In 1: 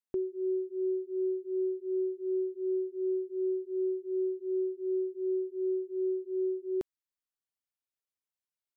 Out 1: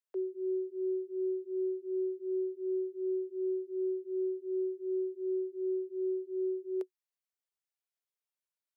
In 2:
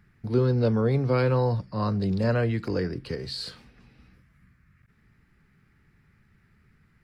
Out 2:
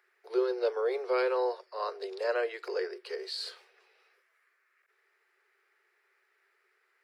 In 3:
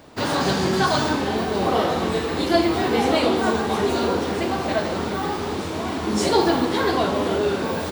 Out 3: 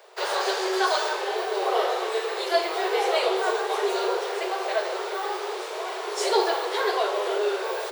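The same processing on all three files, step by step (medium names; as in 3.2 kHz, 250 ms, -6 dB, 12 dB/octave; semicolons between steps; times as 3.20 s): Chebyshev high-pass 370 Hz, order 8; trim -2 dB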